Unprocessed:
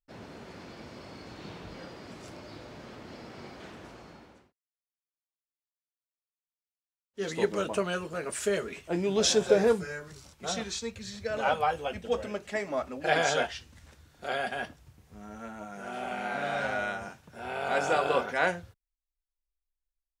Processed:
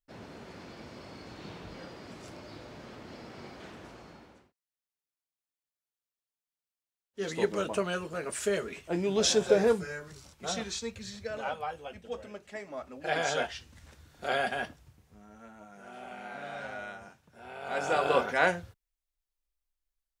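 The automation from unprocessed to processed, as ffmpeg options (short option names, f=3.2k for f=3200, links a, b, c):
-af "volume=21dB,afade=t=out:st=11.05:d=0.48:silence=0.398107,afade=t=in:st=12.76:d=1.62:silence=0.266073,afade=t=out:st=14.38:d=0.87:silence=0.266073,afade=t=in:st=17.61:d=0.57:silence=0.298538"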